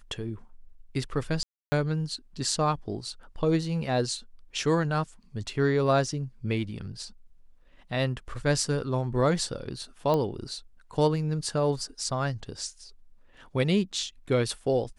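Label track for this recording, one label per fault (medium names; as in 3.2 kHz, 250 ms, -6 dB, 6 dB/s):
1.430000	1.720000	dropout 290 ms
10.140000	10.140000	pop -16 dBFS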